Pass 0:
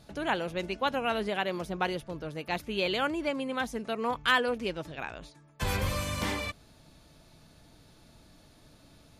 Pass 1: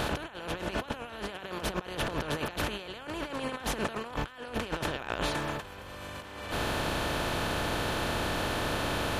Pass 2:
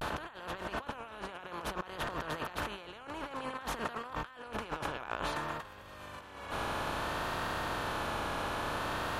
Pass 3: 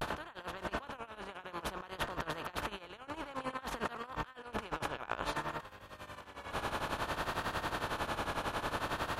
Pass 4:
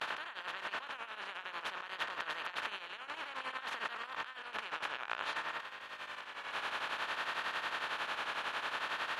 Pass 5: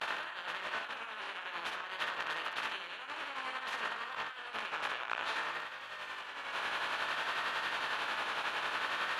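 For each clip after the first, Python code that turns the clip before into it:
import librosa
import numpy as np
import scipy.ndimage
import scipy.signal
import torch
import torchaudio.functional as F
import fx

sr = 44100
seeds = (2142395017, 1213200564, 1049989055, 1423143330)

y1 = fx.bin_compress(x, sr, power=0.4)
y1 = fx.over_compress(y1, sr, threshold_db=-31.0, ratio=-0.5)
y1 = y1 * librosa.db_to_amplitude(-2.0)
y2 = fx.dynamic_eq(y1, sr, hz=1100.0, q=1.1, threshold_db=-50.0, ratio=4.0, max_db=8)
y2 = fx.vibrato(y2, sr, rate_hz=0.57, depth_cents=84.0)
y2 = y2 * librosa.db_to_amplitude(-8.0)
y3 = fx.tremolo_shape(y2, sr, shape='triangle', hz=11.0, depth_pct=85)
y3 = y3 * librosa.db_to_amplitude(2.5)
y4 = fx.bin_compress(y3, sr, power=0.6)
y4 = fx.bandpass_q(y4, sr, hz=2300.0, q=1.0)
y4 = y4 * librosa.db_to_amplitude(1.0)
y5 = fx.room_early_taps(y4, sr, ms=(18, 64), db=(-4.5, -4.5))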